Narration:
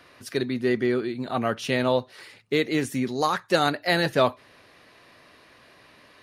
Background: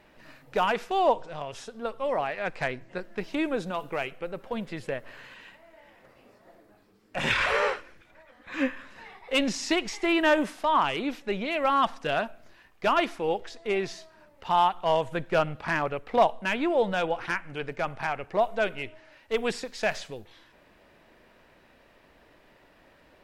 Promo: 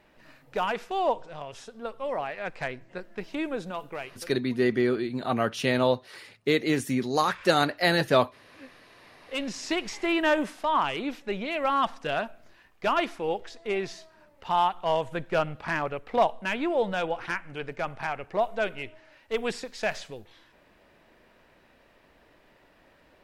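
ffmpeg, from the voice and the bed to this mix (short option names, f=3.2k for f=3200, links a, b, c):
-filter_complex "[0:a]adelay=3950,volume=-0.5dB[a];[1:a]volume=17dB,afade=t=out:st=3.79:d=0.64:silence=0.11885,afade=t=in:st=8.92:d=0.97:silence=0.1[b];[a][b]amix=inputs=2:normalize=0"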